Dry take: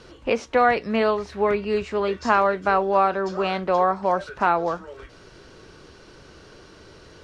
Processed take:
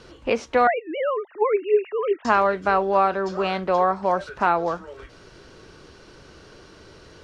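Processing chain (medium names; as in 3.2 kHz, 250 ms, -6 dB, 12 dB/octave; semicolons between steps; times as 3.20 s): 0.67–2.25 s: formants replaced by sine waves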